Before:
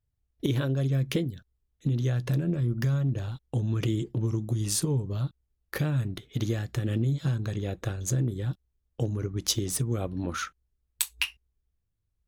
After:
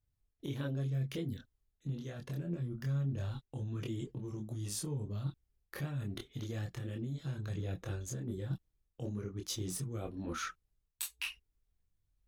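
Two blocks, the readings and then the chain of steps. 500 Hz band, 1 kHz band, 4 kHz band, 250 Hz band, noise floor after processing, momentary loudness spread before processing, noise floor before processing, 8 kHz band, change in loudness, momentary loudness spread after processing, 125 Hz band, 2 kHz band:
-10.0 dB, -7.5 dB, -11.0 dB, -10.0 dB, -82 dBFS, 7 LU, -78 dBFS, -11.0 dB, -10.5 dB, 7 LU, -10.5 dB, -9.0 dB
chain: reverse; compression 6:1, threshold -34 dBFS, peak gain reduction 13 dB; reverse; chorus voices 6, 0.24 Hz, delay 25 ms, depth 4.4 ms; trim +1.5 dB

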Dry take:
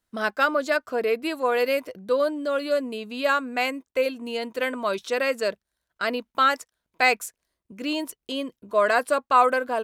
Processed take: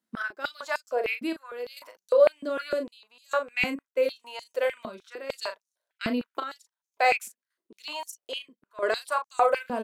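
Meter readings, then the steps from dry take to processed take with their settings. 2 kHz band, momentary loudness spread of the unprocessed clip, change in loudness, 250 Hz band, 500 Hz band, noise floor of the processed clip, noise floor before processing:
-5.5 dB, 9 LU, -4.0 dB, -5.5 dB, -3.0 dB, under -85 dBFS, -84 dBFS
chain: trance gate "x.xxxx..xxxxx..x" 68 bpm -12 dB; doubling 37 ms -8 dB; step-sequenced high-pass 6.6 Hz 220–6200 Hz; trim -7 dB

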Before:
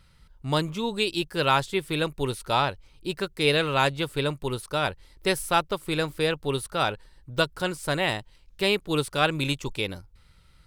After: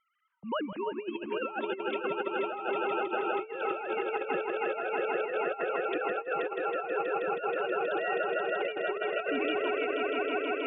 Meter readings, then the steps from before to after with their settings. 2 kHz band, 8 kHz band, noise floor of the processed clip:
-5.0 dB, under -40 dB, -45 dBFS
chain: formants replaced by sine waves; on a send: echo with a slow build-up 160 ms, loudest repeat 5, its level -8 dB; on the sum: compressor with a negative ratio -25 dBFS, ratio -0.5; tape noise reduction on one side only decoder only; trim -6 dB

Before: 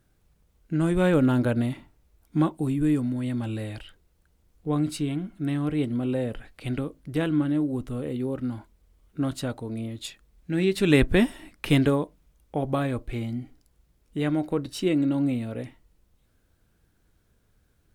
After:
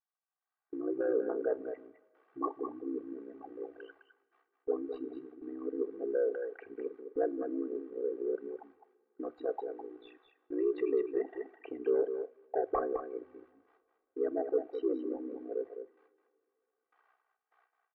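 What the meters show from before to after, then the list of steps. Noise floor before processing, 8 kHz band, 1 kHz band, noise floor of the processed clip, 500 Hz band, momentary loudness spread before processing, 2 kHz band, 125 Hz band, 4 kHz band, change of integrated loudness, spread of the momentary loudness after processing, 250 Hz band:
-67 dBFS, under -35 dB, -6.0 dB, under -85 dBFS, -3.0 dB, 15 LU, -18.0 dB, under -40 dB, under -25 dB, -9.5 dB, 14 LU, -15.0 dB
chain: resonances exaggerated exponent 3; added noise blue -55 dBFS; peak limiter -18.5 dBFS, peak gain reduction 10 dB; high-pass 550 Hz 24 dB/octave; level rider gain up to 11 dB; gate with hold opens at -32 dBFS; saturation -18 dBFS, distortion -16 dB; ring modulator 31 Hz; low-pass 1.4 kHz 24 dB/octave; comb 2.6 ms, depth 92%; delay 208 ms -8.5 dB; two-slope reverb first 0.24 s, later 2.4 s, from -21 dB, DRR 15.5 dB; trim -3 dB

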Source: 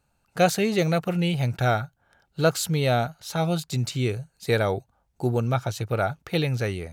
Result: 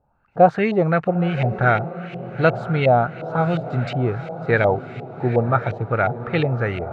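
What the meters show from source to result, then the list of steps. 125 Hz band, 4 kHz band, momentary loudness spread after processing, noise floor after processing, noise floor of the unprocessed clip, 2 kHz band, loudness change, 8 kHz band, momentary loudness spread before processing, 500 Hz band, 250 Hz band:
+3.5 dB, -6.0 dB, 9 LU, -48 dBFS, -71 dBFS, +6.5 dB, +5.0 dB, under -25 dB, 7 LU, +5.5 dB, +3.5 dB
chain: echo that smears into a reverb 929 ms, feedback 52%, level -12 dB; LFO low-pass saw up 2.8 Hz 660–2500 Hz; trim +3 dB

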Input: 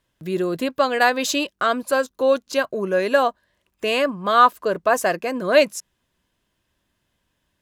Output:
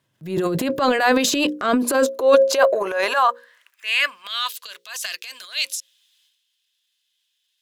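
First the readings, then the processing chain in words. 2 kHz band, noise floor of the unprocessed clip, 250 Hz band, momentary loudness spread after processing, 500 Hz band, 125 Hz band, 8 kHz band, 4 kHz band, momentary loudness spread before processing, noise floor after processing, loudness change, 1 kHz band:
0.0 dB, -74 dBFS, +2.5 dB, 14 LU, 0.0 dB, no reading, +4.5 dB, +3.5 dB, 8 LU, -73 dBFS, +0.5 dB, -2.5 dB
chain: high-pass sweep 120 Hz -> 3.5 kHz, 1.01–4.49 s; hum notches 60/120/180/240/300/360/420/480/540 Hz; transient shaper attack -8 dB, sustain +10 dB; trim +1 dB

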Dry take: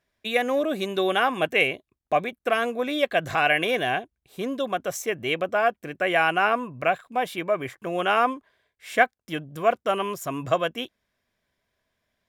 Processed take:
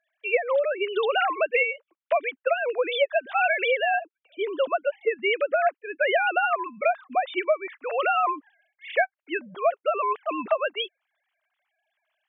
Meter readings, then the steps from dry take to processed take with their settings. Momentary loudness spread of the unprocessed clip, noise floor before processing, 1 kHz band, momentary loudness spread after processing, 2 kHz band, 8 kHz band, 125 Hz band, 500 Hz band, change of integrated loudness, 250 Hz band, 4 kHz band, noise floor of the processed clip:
9 LU, -83 dBFS, -1.0 dB, 7 LU, -0.5 dB, under -40 dB, under -20 dB, +1.0 dB, -0.5 dB, -9.0 dB, -3.0 dB, under -85 dBFS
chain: formants replaced by sine waves; tilt EQ +2.5 dB/octave; compression 6:1, threshold -26 dBFS, peak gain reduction 13 dB; trim +6.5 dB

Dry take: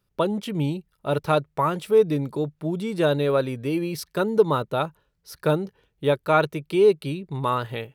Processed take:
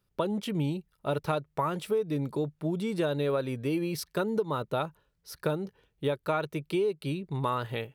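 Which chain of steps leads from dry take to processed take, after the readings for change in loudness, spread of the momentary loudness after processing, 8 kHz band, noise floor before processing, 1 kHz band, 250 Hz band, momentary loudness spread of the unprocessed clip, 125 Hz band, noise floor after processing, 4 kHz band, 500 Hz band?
-7.5 dB, 5 LU, -3.5 dB, -73 dBFS, -7.5 dB, -5.0 dB, 9 LU, -5.5 dB, -75 dBFS, -5.5 dB, -8.5 dB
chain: compression 12:1, threshold -22 dBFS, peak gain reduction 12 dB; trim -2.5 dB

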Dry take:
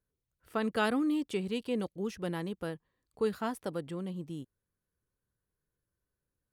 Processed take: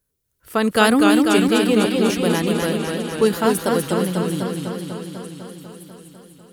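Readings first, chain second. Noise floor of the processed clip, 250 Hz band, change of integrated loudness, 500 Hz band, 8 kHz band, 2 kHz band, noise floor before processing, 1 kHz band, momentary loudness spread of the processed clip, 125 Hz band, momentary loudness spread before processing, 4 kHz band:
-74 dBFS, +16.5 dB, +16.0 dB, +16.0 dB, +24.5 dB, +16.5 dB, under -85 dBFS, +16.5 dB, 18 LU, +16.0 dB, 11 LU, +19.5 dB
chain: treble shelf 5.5 kHz +11.5 dB; level rider gain up to 6.5 dB; on a send: repeats whose band climbs or falls 564 ms, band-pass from 2.7 kHz, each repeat 0.7 oct, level -9 dB; on the sum: modulated delay 248 ms, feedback 72%, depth 93 cents, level -4 dB; trim +7 dB

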